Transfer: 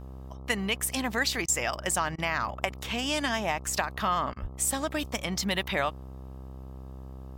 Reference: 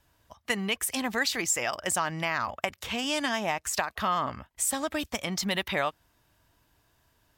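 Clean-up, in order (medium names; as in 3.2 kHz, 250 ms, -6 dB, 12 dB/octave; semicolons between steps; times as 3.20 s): de-hum 65.4 Hz, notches 20; de-plosive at 4.41 s; interpolate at 1.46/2.16/4.34 s, 21 ms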